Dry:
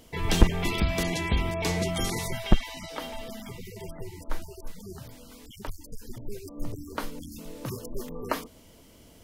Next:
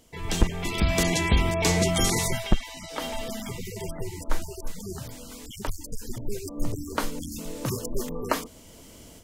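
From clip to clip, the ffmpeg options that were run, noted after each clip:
-af "dynaudnorm=f=180:g=3:m=3.55,equalizer=f=7400:w=1.6:g=6,volume=0.531"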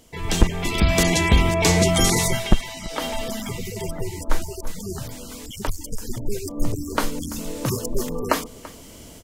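-af "aecho=1:1:336:0.106,volume=1.78"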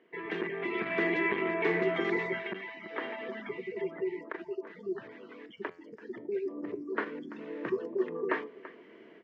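-af "flanger=delay=5.3:depth=7.2:regen=83:speed=0.25:shape=triangular,asoftclip=type=tanh:threshold=0.126,highpass=f=250:w=0.5412,highpass=f=250:w=1.3066,equalizer=f=260:t=q:w=4:g=-8,equalizer=f=380:t=q:w=4:g=8,equalizer=f=560:t=q:w=4:g=-8,equalizer=f=820:t=q:w=4:g=-9,equalizer=f=1300:t=q:w=4:g=-4,equalizer=f=1800:t=q:w=4:g=7,lowpass=f=2200:w=0.5412,lowpass=f=2200:w=1.3066"

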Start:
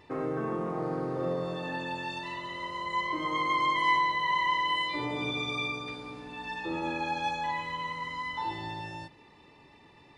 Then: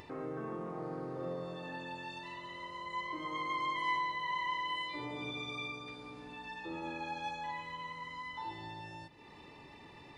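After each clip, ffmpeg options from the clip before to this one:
-af "acompressor=mode=upward:threshold=0.02:ratio=2.5,volume=0.376"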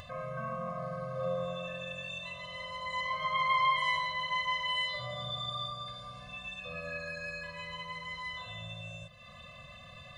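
-af "equalizer=f=210:w=1.4:g=-7,afftfilt=real='re*eq(mod(floor(b*sr/1024/250),2),0)':imag='im*eq(mod(floor(b*sr/1024/250),2),0)':win_size=1024:overlap=0.75,volume=2.82"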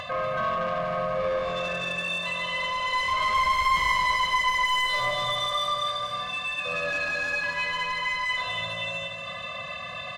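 -filter_complex "[0:a]asplit=2[s0][s1];[s1]highpass=f=720:p=1,volume=15.8,asoftclip=type=tanh:threshold=0.133[s2];[s0][s2]amix=inputs=2:normalize=0,lowpass=f=2400:p=1,volume=0.501,aecho=1:1:241|482|723|964|1205|1446|1687:0.501|0.281|0.157|0.088|0.0493|0.0276|0.0155"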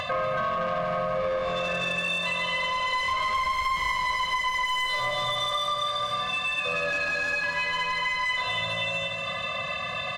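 -af "acompressor=threshold=0.0355:ratio=6,volume=1.68"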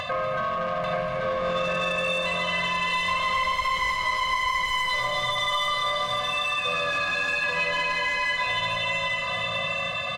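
-af "aecho=1:1:839:0.708"

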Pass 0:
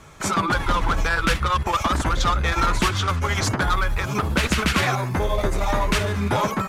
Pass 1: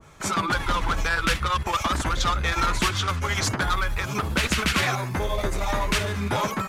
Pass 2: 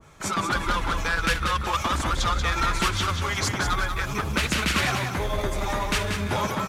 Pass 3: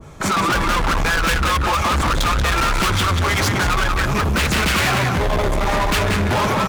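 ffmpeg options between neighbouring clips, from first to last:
-af "adynamicequalizer=threshold=0.0316:dfrequency=1500:dqfactor=0.7:tfrequency=1500:tqfactor=0.7:attack=5:release=100:ratio=0.375:range=2:mode=boostabove:tftype=highshelf,volume=0.631"
-af "aecho=1:1:185|370|555|740:0.473|0.156|0.0515|0.017,volume=0.841"
-filter_complex "[0:a]asplit=2[s0][s1];[s1]adynamicsmooth=sensitivity=6.5:basefreq=780,volume=1.26[s2];[s0][s2]amix=inputs=2:normalize=0,volume=14.1,asoftclip=hard,volume=0.0708,volume=2.24"

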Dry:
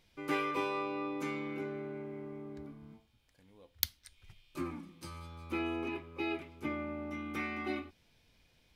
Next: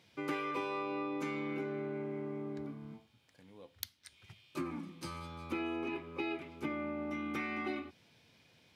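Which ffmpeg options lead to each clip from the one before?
-af "acompressor=threshold=0.01:ratio=4,highpass=f=100:w=0.5412,highpass=f=100:w=1.3066,highshelf=f=9900:g=-8.5,volume=1.78"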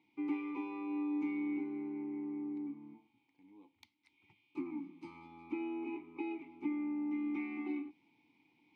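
-filter_complex "[0:a]areverse,acompressor=mode=upward:threshold=0.00126:ratio=2.5,areverse,asplit=3[s0][s1][s2];[s0]bandpass=f=300:t=q:w=8,volume=1[s3];[s1]bandpass=f=870:t=q:w=8,volume=0.501[s4];[s2]bandpass=f=2240:t=q:w=8,volume=0.355[s5];[s3][s4][s5]amix=inputs=3:normalize=0,volume=1.88"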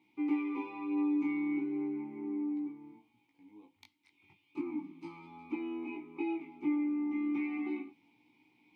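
-af "flanger=delay=16:depth=5.2:speed=0.35,volume=2"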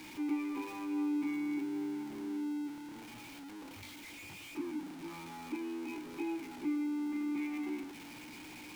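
-af "aeval=exprs='val(0)+0.5*0.0106*sgn(val(0))':c=same,volume=0.631"

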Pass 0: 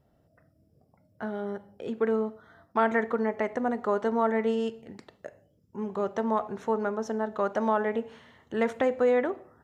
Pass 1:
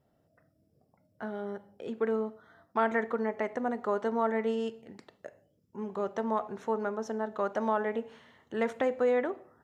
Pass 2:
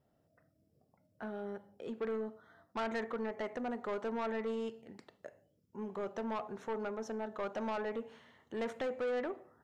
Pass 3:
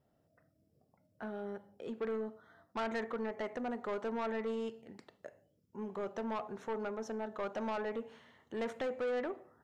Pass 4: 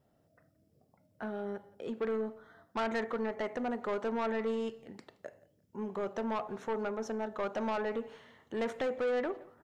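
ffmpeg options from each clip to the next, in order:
-af "lowshelf=f=74:g=-11.5,volume=0.708"
-af "asoftclip=type=tanh:threshold=0.0398,volume=0.668"
-af anull
-af "aecho=1:1:172|344:0.0708|0.0177,volume=1.5"

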